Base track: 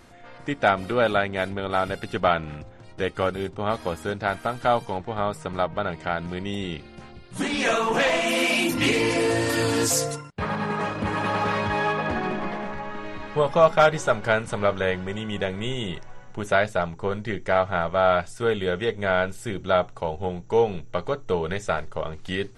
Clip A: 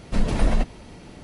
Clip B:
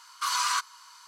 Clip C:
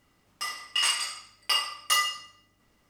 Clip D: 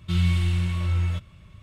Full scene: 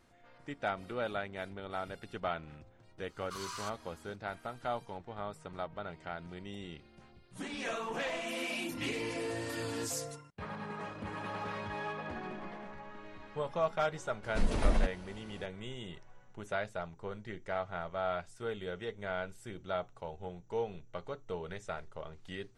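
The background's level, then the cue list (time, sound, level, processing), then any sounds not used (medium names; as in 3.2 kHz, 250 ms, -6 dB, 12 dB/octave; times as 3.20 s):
base track -15 dB
3.09 s: add B -16 dB
14.23 s: add A -7.5 dB + peaking EQ 130 Hz -8.5 dB 0.71 oct
not used: C, D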